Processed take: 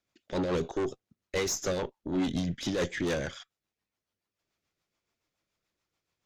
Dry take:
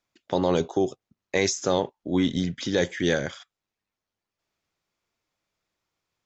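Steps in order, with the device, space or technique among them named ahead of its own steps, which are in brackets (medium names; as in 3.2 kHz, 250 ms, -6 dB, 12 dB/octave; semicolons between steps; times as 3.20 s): overdriven rotary cabinet (valve stage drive 26 dB, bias 0.45; rotary cabinet horn 7 Hz); trim +2.5 dB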